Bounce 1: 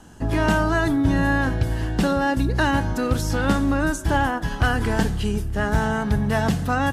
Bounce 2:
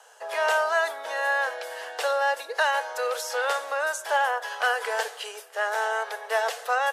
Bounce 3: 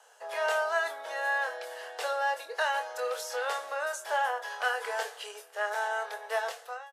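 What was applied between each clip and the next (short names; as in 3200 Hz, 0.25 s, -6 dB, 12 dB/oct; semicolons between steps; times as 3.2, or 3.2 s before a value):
Chebyshev high-pass 460 Hz, order 6
ending faded out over 0.57 s; doubler 24 ms -7 dB; gain -6.5 dB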